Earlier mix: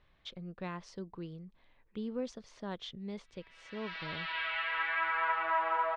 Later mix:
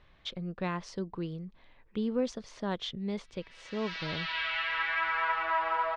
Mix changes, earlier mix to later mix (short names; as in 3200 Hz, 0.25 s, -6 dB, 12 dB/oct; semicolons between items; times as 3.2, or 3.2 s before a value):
speech +7.0 dB; background: remove air absorption 250 m